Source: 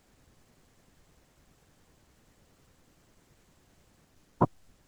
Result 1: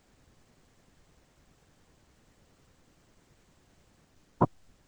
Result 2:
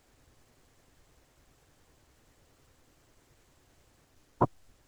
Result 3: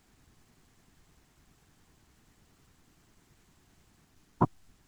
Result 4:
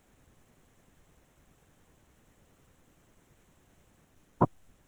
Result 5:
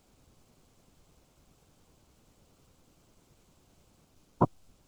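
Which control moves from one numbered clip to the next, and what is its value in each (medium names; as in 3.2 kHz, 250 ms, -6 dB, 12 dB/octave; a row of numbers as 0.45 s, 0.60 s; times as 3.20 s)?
peaking EQ, frequency: 12 kHz, 190 Hz, 540 Hz, 4.7 kHz, 1.8 kHz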